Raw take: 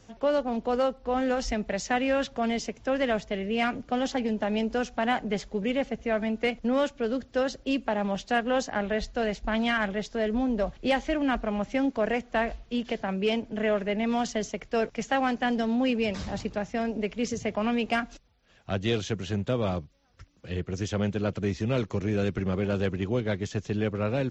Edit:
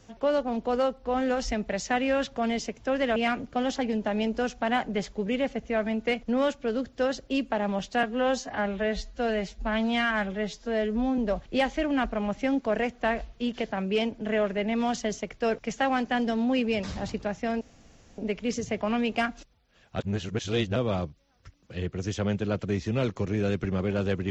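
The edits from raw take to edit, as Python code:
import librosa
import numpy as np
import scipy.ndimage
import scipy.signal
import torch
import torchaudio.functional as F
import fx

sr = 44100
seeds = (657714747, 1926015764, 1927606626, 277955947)

y = fx.edit(x, sr, fx.cut(start_s=3.16, length_s=0.36),
    fx.stretch_span(start_s=8.39, length_s=2.1, factor=1.5),
    fx.insert_room_tone(at_s=16.92, length_s=0.57),
    fx.reverse_span(start_s=18.73, length_s=0.77), tone=tone)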